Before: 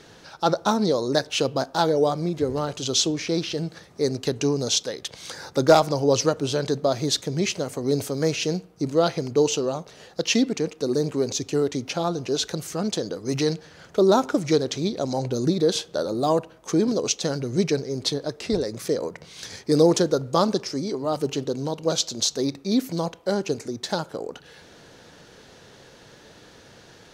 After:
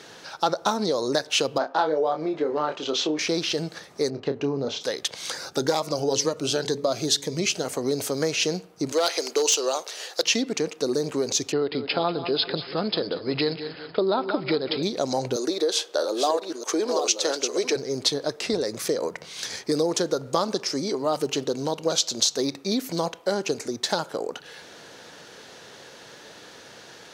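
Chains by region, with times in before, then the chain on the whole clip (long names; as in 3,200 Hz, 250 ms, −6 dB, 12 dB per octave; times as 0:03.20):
0:01.58–0:03.19: band-pass filter 260–2,400 Hz + double-tracking delay 26 ms −6.5 dB
0:04.10–0:04.81: head-to-tape spacing loss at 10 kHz 38 dB + double-tracking delay 29 ms −9 dB
0:05.37–0:07.65: hum removal 141.5 Hz, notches 3 + phaser whose notches keep moving one way rising 2 Hz
0:08.92–0:10.23: high-pass filter 340 Hz 24 dB per octave + high-shelf EQ 2,200 Hz +10.5 dB + hard clipping −13 dBFS
0:11.52–0:14.83: linear-phase brick-wall low-pass 5,200 Hz + repeating echo 190 ms, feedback 43%, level −13.5 dB
0:15.36–0:17.76: delay that plays each chunk backwards 639 ms, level −8 dB + high-pass filter 320 Hz 24 dB per octave
whole clip: high-pass filter 160 Hz 6 dB per octave; downward compressor 6 to 1, threshold −23 dBFS; low-shelf EQ 340 Hz −7 dB; level +5.5 dB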